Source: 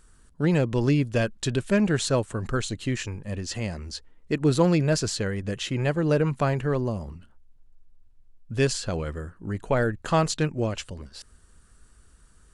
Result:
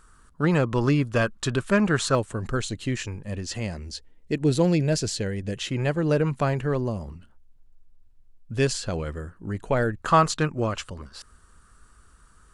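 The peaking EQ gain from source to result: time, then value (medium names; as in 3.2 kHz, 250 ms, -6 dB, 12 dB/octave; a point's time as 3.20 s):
peaking EQ 1.2 kHz 0.72 oct
+11.5 dB
from 2.15 s -0.5 dB
from 3.78 s -9.5 dB
from 5.57 s 0 dB
from 10.01 s +10 dB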